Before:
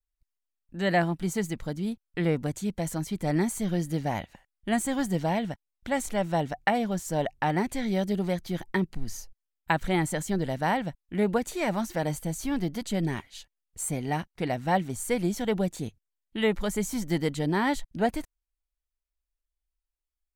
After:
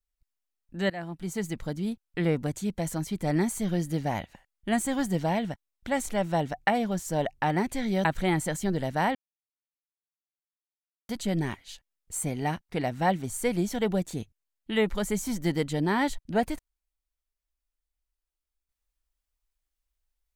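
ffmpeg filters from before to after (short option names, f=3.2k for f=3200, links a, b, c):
-filter_complex "[0:a]asplit=5[a][b][c][d][e];[a]atrim=end=0.9,asetpts=PTS-STARTPTS,afade=t=out:st=0.896:d=0.004:c=hsin:silence=0.105925[f];[b]atrim=start=0.9:end=8.052,asetpts=PTS-STARTPTS,afade=t=in:d=0.69:silence=0.105925[g];[c]atrim=start=9.708:end=10.81,asetpts=PTS-STARTPTS,afade=t=out:st=1.098:d=0.004:c=hsin[h];[d]atrim=start=10.81:end=12.75,asetpts=PTS-STARTPTS,volume=0[i];[e]atrim=start=12.75,asetpts=PTS-STARTPTS,afade=t=in:d=0.004:c=hsin[j];[f][g]concat=n=2:v=0:a=1[k];[h][i][j]concat=n=3:v=0:a=1[l];[k][l]acrossfade=d=0.004:c1=hsin:c2=hsin"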